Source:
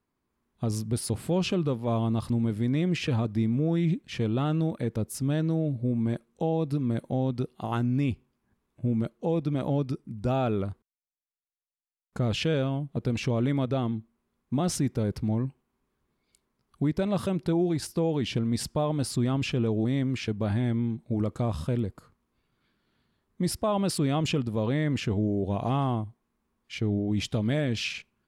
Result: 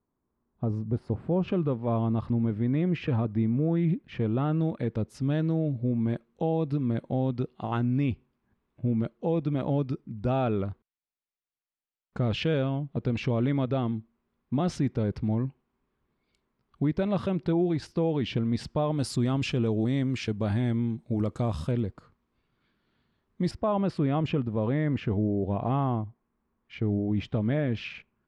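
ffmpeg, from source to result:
-af "asetnsamples=n=441:p=0,asendcmd='1.48 lowpass f 2000;4.61 lowpass f 3600;18.98 lowpass f 8800;21.71 lowpass f 4400;23.51 lowpass f 2000',lowpass=1.1k"

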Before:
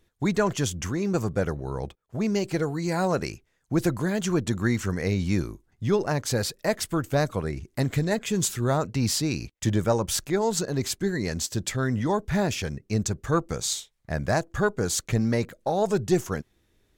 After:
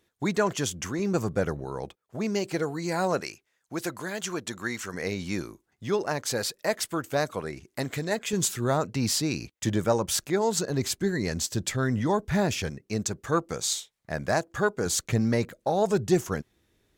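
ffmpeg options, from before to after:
-af "asetnsamples=n=441:p=0,asendcmd='0.99 highpass f 110;1.64 highpass f 260;3.21 highpass f 830;4.94 highpass f 390;8.33 highpass f 150;10.7 highpass f 57;12.7 highpass f 230;14.86 highpass f 62',highpass=f=230:p=1"

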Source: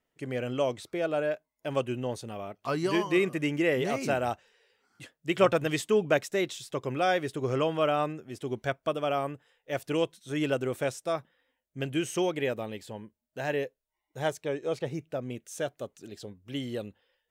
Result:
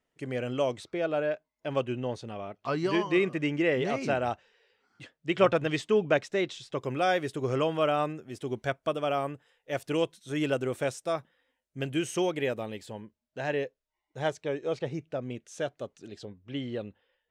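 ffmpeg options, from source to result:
-af "asetnsamples=n=441:p=0,asendcmd='0.84 lowpass f 5100;6.78 lowpass f 12000;13.01 lowpass f 6000;16.25 lowpass f 3400',lowpass=9.4k"

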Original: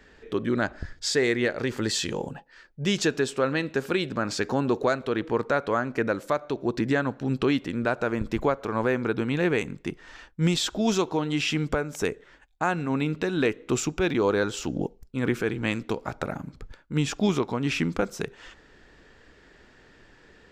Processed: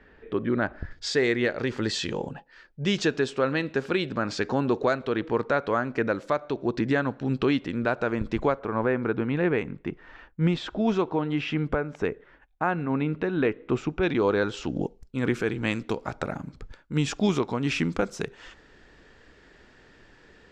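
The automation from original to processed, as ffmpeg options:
-af "asetnsamples=n=441:p=0,asendcmd='0.91 lowpass f 5100;8.59 lowpass f 2200;14.03 lowpass f 4200;14.76 lowpass f 8600',lowpass=2.4k"

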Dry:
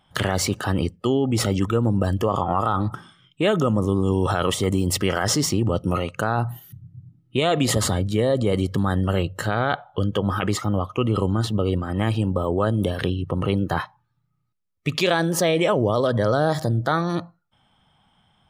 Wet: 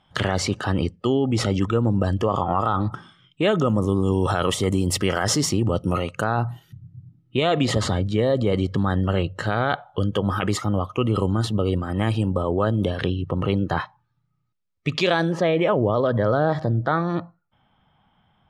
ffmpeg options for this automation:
-af "asetnsamples=n=441:p=0,asendcmd='3.7 lowpass f 12000;6.24 lowpass f 5100;9.47 lowpass f 12000;12.42 lowpass f 5700;15.32 lowpass f 2500',lowpass=6.4k"

